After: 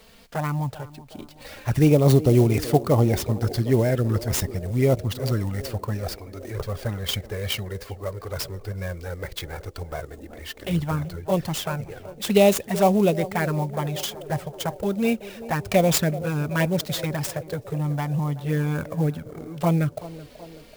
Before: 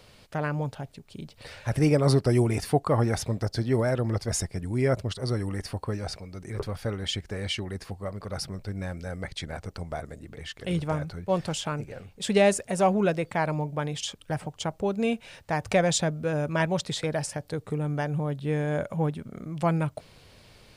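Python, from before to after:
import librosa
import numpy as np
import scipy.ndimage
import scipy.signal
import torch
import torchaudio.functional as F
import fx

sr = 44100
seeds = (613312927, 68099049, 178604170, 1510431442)

y = fx.env_flanger(x, sr, rest_ms=4.7, full_db=-19.5)
y = fx.high_shelf(y, sr, hz=9400.0, db=7.0)
y = fx.echo_banded(y, sr, ms=379, feedback_pct=75, hz=460.0, wet_db=-14)
y = fx.clock_jitter(y, sr, seeds[0], jitter_ms=0.023)
y = y * 10.0 ** (5.5 / 20.0)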